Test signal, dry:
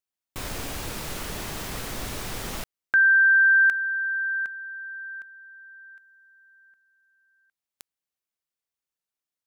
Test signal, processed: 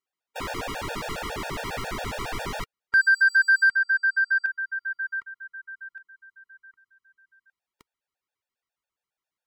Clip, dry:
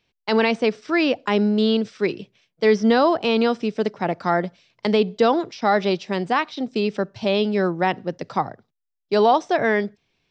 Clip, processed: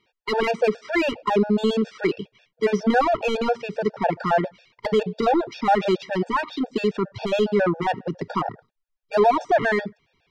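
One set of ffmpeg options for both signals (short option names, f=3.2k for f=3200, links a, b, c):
-filter_complex "[0:a]asubboost=boost=3:cutoff=140,asplit=2[a][b];[b]highpass=f=720:p=1,volume=20dB,asoftclip=type=tanh:threshold=-6.5dB[c];[a][c]amix=inputs=2:normalize=0,lowpass=f=1.1k:p=1,volume=-6dB,afftfilt=real='re*gt(sin(2*PI*7.3*pts/sr)*(1-2*mod(floor(b*sr/1024/470),2)),0)':imag='im*gt(sin(2*PI*7.3*pts/sr)*(1-2*mod(floor(b*sr/1024/470),2)),0)':win_size=1024:overlap=0.75"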